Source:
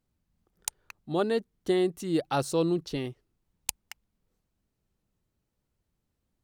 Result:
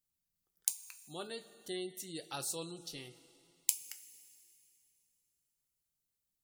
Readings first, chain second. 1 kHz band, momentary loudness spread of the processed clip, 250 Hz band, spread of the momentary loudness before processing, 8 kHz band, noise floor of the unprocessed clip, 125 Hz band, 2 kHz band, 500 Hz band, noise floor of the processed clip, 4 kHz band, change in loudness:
-15.0 dB, 17 LU, -18.5 dB, 10 LU, +1.0 dB, -81 dBFS, -18.0 dB, -10.5 dB, -17.5 dB, under -85 dBFS, -4.5 dB, -9.5 dB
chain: pre-emphasis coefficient 0.9; two-slope reverb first 0.24 s, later 2.8 s, from -17 dB, DRR 6.5 dB; spectral gate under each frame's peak -30 dB strong

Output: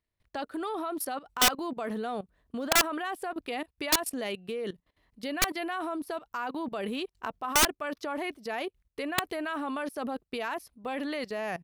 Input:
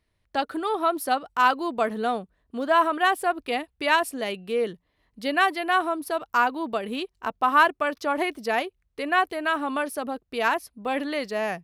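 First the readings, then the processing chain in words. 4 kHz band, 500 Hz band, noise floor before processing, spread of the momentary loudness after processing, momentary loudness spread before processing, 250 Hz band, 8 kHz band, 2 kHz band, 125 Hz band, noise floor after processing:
+1.0 dB, -7.5 dB, -74 dBFS, 13 LU, 10 LU, -4.0 dB, +10.0 dB, -8.0 dB, n/a, -85 dBFS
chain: level quantiser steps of 18 dB; wrapped overs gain 18 dB; gain +3 dB

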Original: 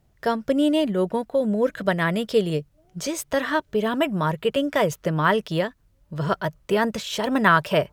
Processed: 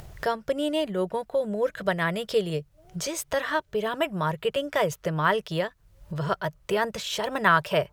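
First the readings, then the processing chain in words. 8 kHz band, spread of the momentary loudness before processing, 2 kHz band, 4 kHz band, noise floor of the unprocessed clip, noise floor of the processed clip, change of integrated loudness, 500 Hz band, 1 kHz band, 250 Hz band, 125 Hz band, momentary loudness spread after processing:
-1.0 dB, 9 LU, -2.5 dB, -2.0 dB, -62 dBFS, -62 dBFS, -4.0 dB, -3.5 dB, -2.5 dB, -8.5 dB, -4.5 dB, 8 LU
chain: bell 250 Hz -14.5 dB 0.46 oct; upward compressor, threshold -24 dBFS; gain -2.5 dB

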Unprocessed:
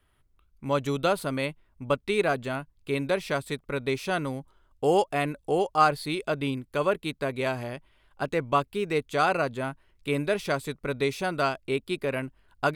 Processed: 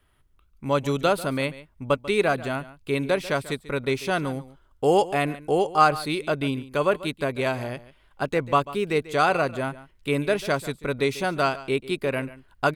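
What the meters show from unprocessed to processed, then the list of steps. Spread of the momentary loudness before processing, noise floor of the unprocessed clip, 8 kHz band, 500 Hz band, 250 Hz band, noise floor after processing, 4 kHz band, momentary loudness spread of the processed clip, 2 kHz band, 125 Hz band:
10 LU, -67 dBFS, +3.0 dB, +3.0 dB, +3.0 dB, -61 dBFS, +3.0 dB, 10 LU, +3.0 dB, +3.0 dB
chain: echo 0.142 s -17 dB; gain +3 dB

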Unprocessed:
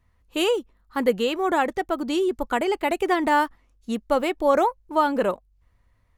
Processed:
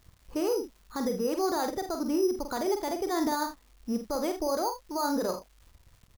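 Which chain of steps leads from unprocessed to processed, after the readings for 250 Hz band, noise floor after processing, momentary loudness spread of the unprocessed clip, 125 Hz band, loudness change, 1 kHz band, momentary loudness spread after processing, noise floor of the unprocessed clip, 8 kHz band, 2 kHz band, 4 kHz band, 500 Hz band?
-4.0 dB, -62 dBFS, 11 LU, n/a, -7.0 dB, -9.0 dB, 7 LU, -64 dBFS, +3.0 dB, -13.5 dB, -8.0 dB, -7.0 dB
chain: LPF 1500 Hz 12 dB/oct; gate -59 dBFS, range -35 dB; limiter -19.5 dBFS, peak gain reduction 11 dB; careless resampling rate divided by 8×, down filtered, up hold; upward compressor, threshold -33 dBFS; early reflections 47 ms -6.5 dB, 79 ms -14 dB; crackle 420/s -47 dBFS; gain -3 dB

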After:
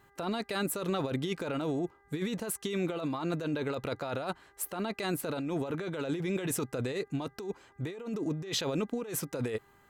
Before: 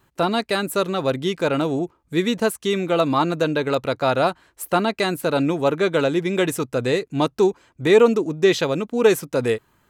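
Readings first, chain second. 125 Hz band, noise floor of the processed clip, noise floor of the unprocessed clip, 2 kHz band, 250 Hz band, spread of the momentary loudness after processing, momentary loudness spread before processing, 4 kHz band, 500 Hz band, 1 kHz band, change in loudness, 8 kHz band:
-9.0 dB, -64 dBFS, -64 dBFS, -14.5 dB, -11.0 dB, 5 LU, 6 LU, -11.5 dB, -16.0 dB, -15.5 dB, -13.5 dB, -5.0 dB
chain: negative-ratio compressor -25 dBFS, ratio -1; buzz 400 Hz, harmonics 5, -57 dBFS -1 dB/oct; gain -8.5 dB

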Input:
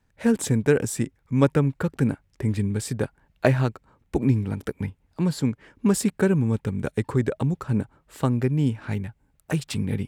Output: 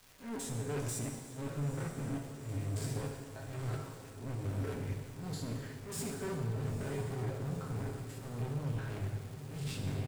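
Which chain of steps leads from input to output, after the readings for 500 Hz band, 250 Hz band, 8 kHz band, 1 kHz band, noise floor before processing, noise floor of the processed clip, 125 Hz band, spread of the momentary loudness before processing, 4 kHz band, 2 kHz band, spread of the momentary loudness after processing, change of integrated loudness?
-16.0 dB, -18.0 dB, -10.0 dB, -12.0 dB, -67 dBFS, -49 dBFS, -12.0 dB, 9 LU, -9.5 dB, -14.5 dB, 6 LU, -14.5 dB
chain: stepped spectrum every 0.1 s; comb 7.4 ms, depth 67%; reverse; compressor 4:1, threshold -33 dBFS, peak gain reduction 18 dB; reverse; hard clip -38 dBFS, distortion -7 dB; auto swell 0.147 s; crackle 520/s -48 dBFS; diffused feedback echo 0.921 s, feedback 67%, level -12 dB; non-linear reverb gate 0.44 s falling, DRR 2 dB

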